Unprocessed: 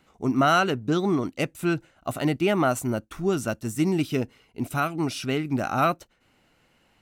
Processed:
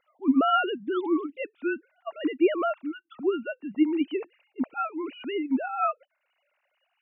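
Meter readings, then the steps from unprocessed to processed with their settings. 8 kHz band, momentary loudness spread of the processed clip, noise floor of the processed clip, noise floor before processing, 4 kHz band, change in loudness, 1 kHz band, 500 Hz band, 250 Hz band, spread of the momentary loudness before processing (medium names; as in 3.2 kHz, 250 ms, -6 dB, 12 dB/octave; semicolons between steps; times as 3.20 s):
under -40 dB, 12 LU, -77 dBFS, -65 dBFS, -5.5 dB, -2.5 dB, -3.0 dB, -2.5 dB, -1.0 dB, 8 LU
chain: formants replaced by sine waves; spectral selection erased 2.82–3.13 s, 360–1100 Hz; trim -2.5 dB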